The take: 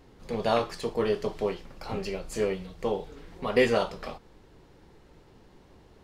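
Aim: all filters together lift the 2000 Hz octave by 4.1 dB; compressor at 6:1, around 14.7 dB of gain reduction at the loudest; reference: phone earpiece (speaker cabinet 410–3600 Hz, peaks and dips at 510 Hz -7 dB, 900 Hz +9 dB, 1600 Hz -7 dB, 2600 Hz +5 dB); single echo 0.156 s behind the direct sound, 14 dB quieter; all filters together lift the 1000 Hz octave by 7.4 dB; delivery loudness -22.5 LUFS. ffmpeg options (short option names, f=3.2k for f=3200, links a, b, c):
-af "equalizer=f=1k:t=o:g=4,equalizer=f=2k:t=o:g=4,acompressor=threshold=-32dB:ratio=6,highpass=410,equalizer=f=510:t=q:w=4:g=-7,equalizer=f=900:t=q:w=4:g=9,equalizer=f=1.6k:t=q:w=4:g=-7,equalizer=f=2.6k:t=q:w=4:g=5,lowpass=f=3.6k:w=0.5412,lowpass=f=3.6k:w=1.3066,aecho=1:1:156:0.2,volume=16.5dB"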